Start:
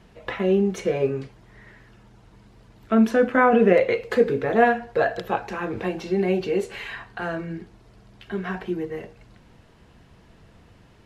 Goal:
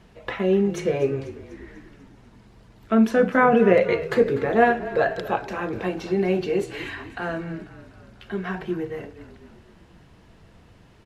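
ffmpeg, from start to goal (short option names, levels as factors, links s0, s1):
-filter_complex "[0:a]asplit=7[s0][s1][s2][s3][s4][s5][s6];[s1]adelay=246,afreqshift=-35,volume=0.168[s7];[s2]adelay=492,afreqshift=-70,volume=0.0977[s8];[s3]adelay=738,afreqshift=-105,volume=0.0562[s9];[s4]adelay=984,afreqshift=-140,volume=0.0327[s10];[s5]adelay=1230,afreqshift=-175,volume=0.0191[s11];[s6]adelay=1476,afreqshift=-210,volume=0.011[s12];[s0][s7][s8][s9][s10][s11][s12]amix=inputs=7:normalize=0"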